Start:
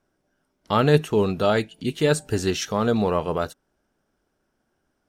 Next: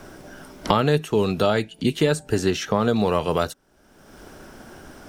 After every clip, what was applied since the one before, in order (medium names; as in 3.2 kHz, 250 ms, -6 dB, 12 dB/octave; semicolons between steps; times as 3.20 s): three bands compressed up and down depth 100%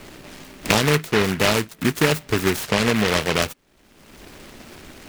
delay time shaken by noise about 1.7 kHz, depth 0.23 ms; trim +1 dB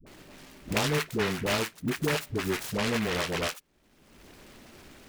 phase dispersion highs, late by 66 ms, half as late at 430 Hz; trim -9 dB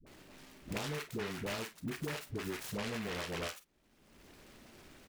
compression, threshold -29 dBFS, peak gain reduction 7 dB; on a send: early reflections 35 ms -13.5 dB, 49 ms -14 dB; on the sum: trim -6.5 dB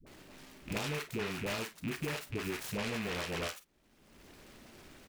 rattle on loud lows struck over -47 dBFS, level -35 dBFS; trim +2 dB